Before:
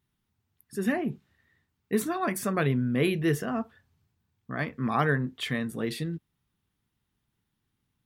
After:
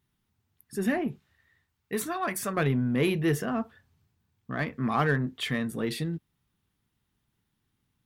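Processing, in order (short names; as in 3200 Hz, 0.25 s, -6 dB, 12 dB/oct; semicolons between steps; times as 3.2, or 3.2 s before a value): 1.07–2.57 bell 240 Hz -7.5 dB 1.9 oct; in parallel at -5 dB: soft clip -28.5 dBFS, distortion -8 dB; on the sum: gain -2 dB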